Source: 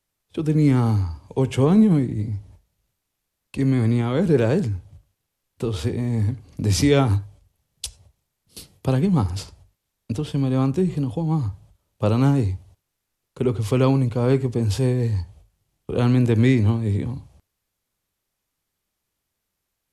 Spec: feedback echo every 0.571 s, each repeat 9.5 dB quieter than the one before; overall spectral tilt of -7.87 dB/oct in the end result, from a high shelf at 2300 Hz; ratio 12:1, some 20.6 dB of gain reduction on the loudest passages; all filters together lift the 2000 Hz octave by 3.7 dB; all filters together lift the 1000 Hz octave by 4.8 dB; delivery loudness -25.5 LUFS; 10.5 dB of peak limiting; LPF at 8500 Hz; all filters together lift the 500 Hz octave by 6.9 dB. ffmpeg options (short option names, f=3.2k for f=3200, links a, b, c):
-af "lowpass=8.5k,equalizer=f=500:t=o:g=8,equalizer=f=1k:t=o:g=3,equalizer=f=2k:t=o:g=6.5,highshelf=f=2.3k:g=-6.5,acompressor=threshold=-28dB:ratio=12,alimiter=level_in=2dB:limit=-24dB:level=0:latency=1,volume=-2dB,aecho=1:1:571|1142|1713|2284:0.335|0.111|0.0365|0.012,volume=11dB"